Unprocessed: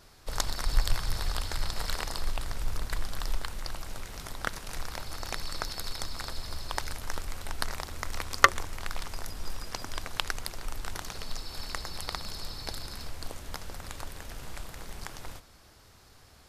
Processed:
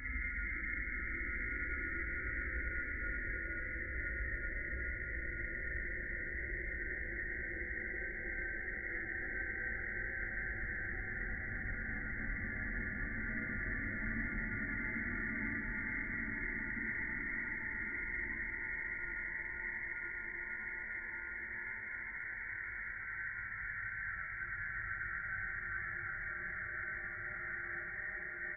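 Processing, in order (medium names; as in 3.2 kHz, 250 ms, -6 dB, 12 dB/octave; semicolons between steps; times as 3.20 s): comb filter that takes the minimum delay 4.3 ms; high-pass 580 Hz 12 dB/octave; loudest bins only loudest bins 8; Paulstretch 6×, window 1.00 s, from 0.51 s; frequency-shifting echo 281 ms, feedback 51%, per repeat -74 Hz, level -6 dB; reverberation, pre-delay 3 ms, DRR -6.5 dB; speed mistake 78 rpm record played at 45 rpm; frequency inversion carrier 2.5 kHz; trim +2 dB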